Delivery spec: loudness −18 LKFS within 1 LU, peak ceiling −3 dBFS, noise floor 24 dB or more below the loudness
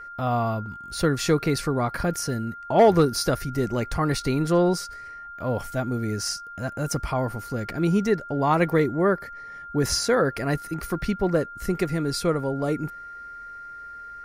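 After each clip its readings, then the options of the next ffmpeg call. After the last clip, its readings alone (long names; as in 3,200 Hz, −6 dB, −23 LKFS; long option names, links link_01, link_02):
interfering tone 1,400 Hz; level of the tone −37 dBFS; integrated loudness −24.5 LKFS; sample peak −8.0 dBFS; target loudness −18.0 LKFS
→ -af "bandreject=frequency=1400:width=30"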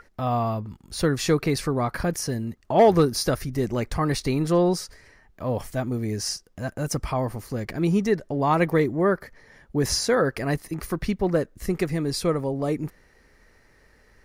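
interfering tone none found; integrated loudness −25.0 LKFS; sample peak −8.5 dBFS; target loudness −18.0 LKFS
→ -af "volume=7dB,alimiter=limit=-3dB:level=0:latency=1"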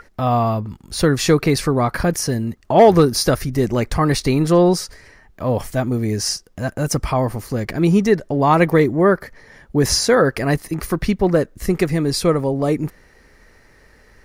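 integrated loudness −18.0 LKFS; sample peak −3.0 dBFS; background noise floor −51 dBFS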